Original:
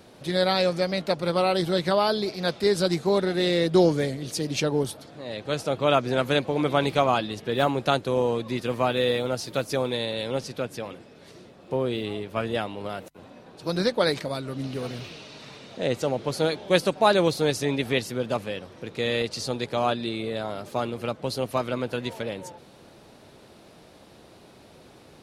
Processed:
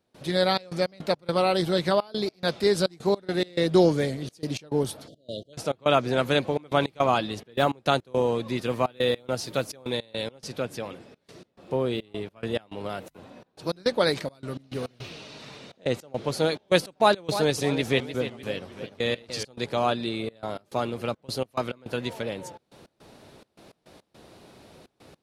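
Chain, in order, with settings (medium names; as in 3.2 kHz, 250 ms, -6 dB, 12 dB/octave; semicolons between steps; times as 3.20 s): 5.08–5.53 s: spectral selection erased 690–2800 Hz; trance gate ".xxx.x.x.xxxxx.x" 105 bpm -24 dB; 16.94–19.45 s: modulated delay 300 ms, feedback 39%, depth 167 cents, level -11 dB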